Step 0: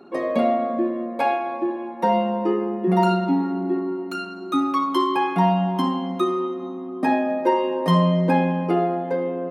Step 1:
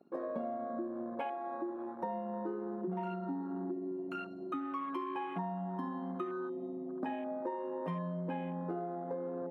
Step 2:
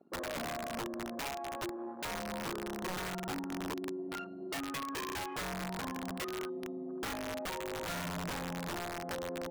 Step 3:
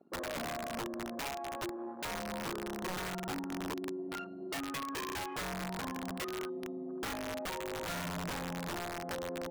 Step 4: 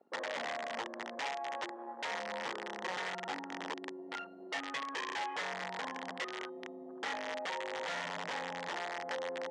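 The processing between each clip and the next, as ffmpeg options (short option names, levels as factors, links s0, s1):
-af "afwtdn=0.0316,acompressor=threshold=0.0447:ratio=6,volume=0.376"
-af "adynamicsmooth=sensitivity=7:basefreq=3500,aeval=exprs='(mod(42.2*val(0)+1,2)-1)/42.2':c=same"
-af anull
-af "highpass=310,equalizer=f=340:t=q:w=4:g=-5,equalizer=f=500:t=q:w=4:g=5,equalizer=f=850:t=q:w=4:g=7,equalizer=f=1900:t=q:w=4:g=9,equalizer=f=3200:t=q:w=4:g=5,lowpass=f=6900:w=0.5412,lowpass=f=6900:w=1.3066,volume=0.75"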